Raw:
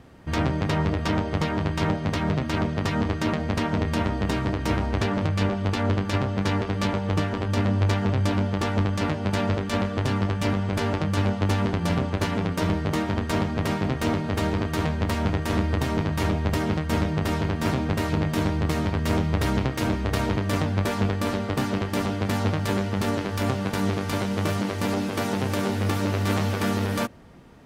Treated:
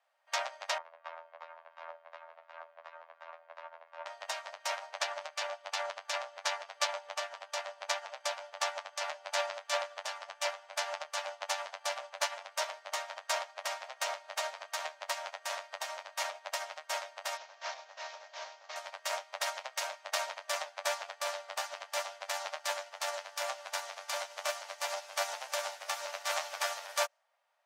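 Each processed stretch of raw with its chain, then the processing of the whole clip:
0.78–4.06 LPF 1700 Hz + echo 0.655 s -17.5 dB + robotiser 82.8 Hz
17.37–18.76 CVSD 32 kbps + de-hum 45.03 Hz, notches 32
whole clip: Chebyshev high-pass 570 Hz, order 6; dynamic EQ 6300 Hz, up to +8 dB, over -54 dBFS, Q 1.2; upward expander 2.5:1, over -39 dBFS

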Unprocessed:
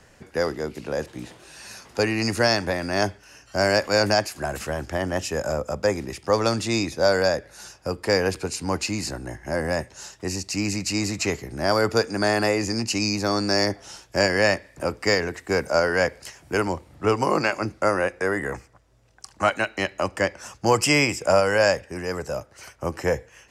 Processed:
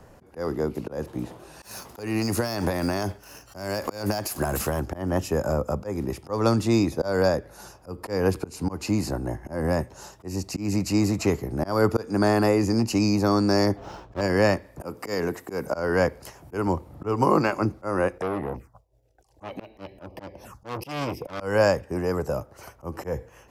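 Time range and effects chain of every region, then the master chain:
1.62–4.8 high shelf 2500 Hz +9 dB + sample leveller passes 1 + compressor 16:1, threshold -22 dBFS
13.77–14.21 half-waves squared off + air absorption 140 m
14.83–15.66 HPF 130 Hz + high shelf 6600 Hz +8 dB
18.18–21.4 expander -55 dBFS + envelope phaser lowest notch 170 Hz, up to 1400 Hz, full sweep at -26 dBFS + core saturation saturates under 2700 Hz
whole clip: dynamic EQ 640 Hz, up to -6 dB, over -33 dBFS, Q 1.4; auto swell 0.184 s; band shelf 3800 Hz -11.5 dB 2.9 oct; gain +5 dB

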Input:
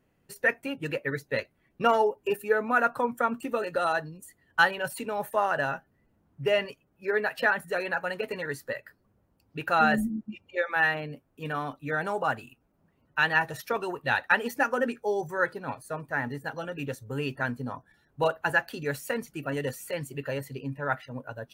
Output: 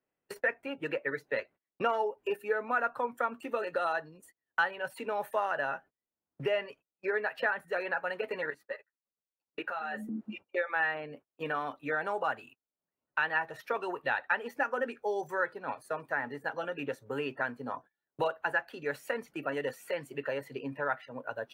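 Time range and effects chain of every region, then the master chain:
8.5–10.09 low shelf 170 Hz -9 dB + level quantiser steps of 18 dB + ensemble effect
whole clip: gate -47 dBFS, range -31 dB; tone controls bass -14 dB, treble -12 dB; three-band squash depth 70%; gain -3.5 dB

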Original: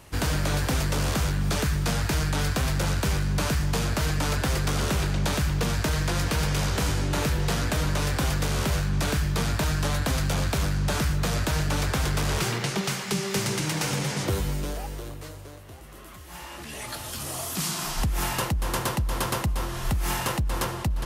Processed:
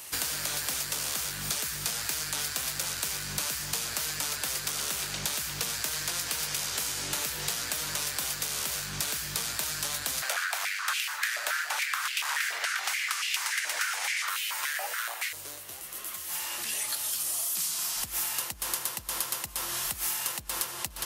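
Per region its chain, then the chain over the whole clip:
10.22–15.33 bell 1700 Hz +10.5 dB 1.5 oct + stepped high-pass 7 Hz 610–2700 Hz
whole clip: tilt +4.5 dB/oct; compressor 6:1, threshold -29 dBFS

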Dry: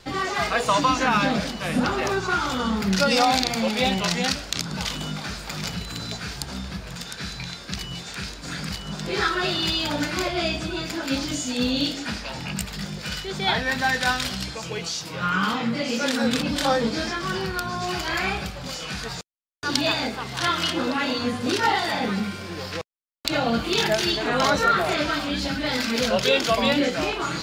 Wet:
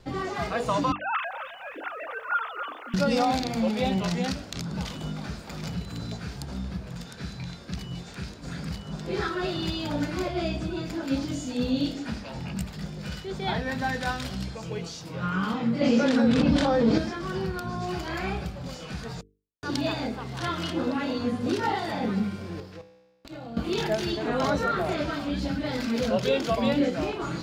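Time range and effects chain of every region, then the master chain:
0.92–2.94 sine-wave speech + HPF 910 Hz + lo-fi delay 0.262 s, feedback 35%, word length 8-bit, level -10.5 dB
15.81–16.98 air absorption 73 m + fast leveller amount 100%
22.6–23.57 resonator 63 Hz, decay 1.3 s, mix 70% + compressor 4:1, threshold -33 dBFS
whole clip: tilt shelf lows +6.5 dB, about 790 Hz; notches 50/100/150/200/250/300/350/400/450 Hz; gain -5 dB

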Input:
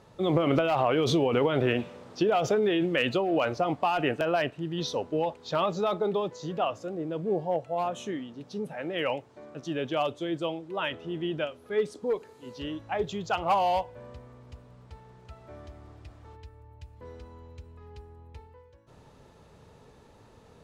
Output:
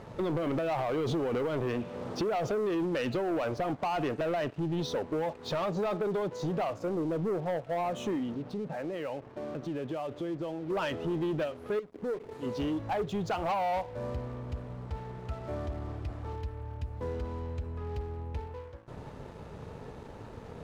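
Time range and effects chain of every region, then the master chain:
8.34–10.7 compressor 5:1, threshold -43 dBFS + HPF 41 Hz + air absorption 170 m
11.79–12.32 median filter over 41 samples + compressor 2:1, threshold -49 dBFS
whole clip: high shelf 2000 Hz -11.5 dB; compressor 4:1, threshold -38 dBFS; sample leveller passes 3

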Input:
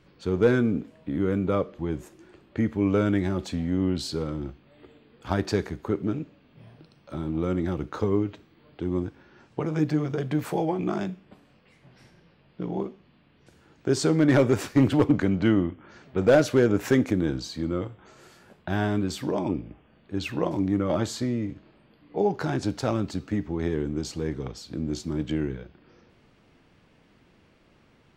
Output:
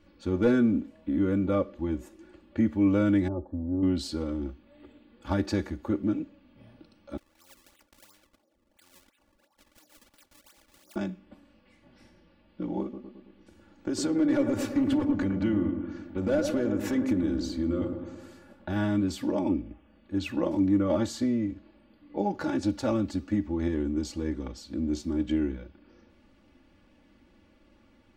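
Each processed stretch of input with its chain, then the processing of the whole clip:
3.28–3.83 inverse Chebyshev low-pass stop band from 2400 Hz, stop band 50 dB + bell 190 Hz -10.5 dB 0.86 oct
7.17–10.96 wah 2.1 Hz 550–3000 Hz, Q 12 + decimation with a swept rate 34×, swing 160% 2.9 Hz + spectral compressor 4:1
12.82–18.76 compressor 4:1, threshold -23 dBFS + dark delay 0.11 s, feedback 57%, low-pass 1300 Hz, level -5.5 dB
whole clip: low shelf 400 Hz +5.5 dB; comb 3.5 ms, depth 91%; gain -6.5 dB

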